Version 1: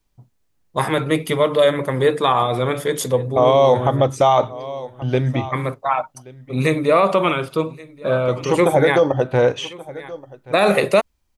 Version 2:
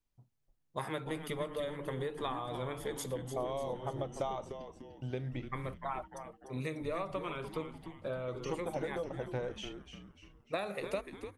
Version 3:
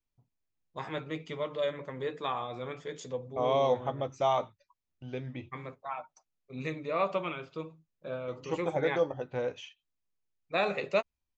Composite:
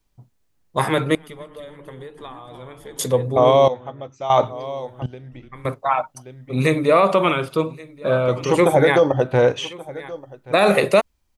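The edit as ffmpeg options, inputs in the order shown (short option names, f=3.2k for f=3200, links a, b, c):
-filter_complex "[1:a]asplit=2[a][b];[0:a]asplit=4[c][d][e][f];[c]atrim=end=1.152[g];[a]atrim=start=1.148:end=2.992[h];[d]atrim=start=2.988:end=3.682[i];[2:a]atrim=start=3.678:end=4.302[j];[e]atrim=start=4.298:end=5.062[k];[b]atrim=start=5.058:end=5.652[l];[f]atrim=start=5.648[m];[g][h]acrossfade=d=0.004:c1=hsin:c2=hsin[n];[n][i]acrossfade=d=0.004:c1=hsin:c2=hsin[o];[o][j]acrossfade=d=0.004:c1=hsin:c2=hsin[p];[p][k]acrossfade=d=0.004:c1=hsin:c2=hsin[q];[q][l]acrossfade=d=0.004:c1=hsin:c2=hsin[r];[r][m]acrossfade=d=0.004:c1=hsin:c2=hsin"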